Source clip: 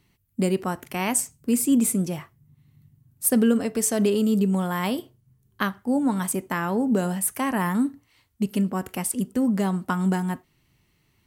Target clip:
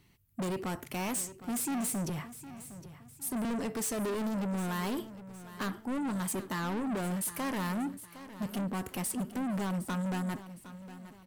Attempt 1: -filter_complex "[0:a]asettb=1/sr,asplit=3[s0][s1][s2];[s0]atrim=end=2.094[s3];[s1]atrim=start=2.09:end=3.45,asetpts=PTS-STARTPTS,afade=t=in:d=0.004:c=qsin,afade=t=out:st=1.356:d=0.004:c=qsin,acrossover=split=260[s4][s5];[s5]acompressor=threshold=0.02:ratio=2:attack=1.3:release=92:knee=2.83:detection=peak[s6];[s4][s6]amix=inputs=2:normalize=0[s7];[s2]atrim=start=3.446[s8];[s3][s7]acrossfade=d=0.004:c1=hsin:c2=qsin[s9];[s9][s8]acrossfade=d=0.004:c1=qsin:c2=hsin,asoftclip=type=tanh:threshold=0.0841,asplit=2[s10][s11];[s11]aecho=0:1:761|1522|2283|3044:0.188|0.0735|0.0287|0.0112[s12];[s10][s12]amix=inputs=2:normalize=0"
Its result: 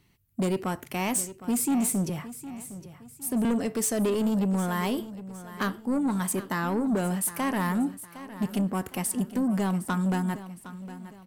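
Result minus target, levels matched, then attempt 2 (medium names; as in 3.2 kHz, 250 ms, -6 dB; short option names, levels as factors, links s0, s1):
saturation: distortion -7 dB
-filter_complex "[0:a]asettb=1/sr,asplit=3[s0][s1][s2];[s0]atrim=end=2.094[s3];[s1]atrim=start=2.09:end=3.45,asetpts=PTS-STARTPTS,afade=t=in:d=0.004:c=qsin,afade=t=out:st=1.356:d=0.004:c=qsin,acrossover=split=260[s4][s5];[s5]acompressor=threshold=0.02:ratio=2:attack=1.3:release=92:knee=2.83:detection=peak[s6];[s4][s6]amix=inputs=2:normalize=0[s7];[s2]atrim=start=3.446[s8];[s3][s7]acrossfade=d=0.004:c1=hsin:c2=qsin[s9];[s9][s8]acrossfade=d=0.004:c1=qsin:c2=hsin,asoftclip=type=tanh:threshold=0.0266,asplit=2[s10][s11];[s11]aecho=0:1:761|1522|2283|3044:0.188|0.0735|0.0287|0.0112[s12];[s10][s12]amix=inputs=2:normalize=0"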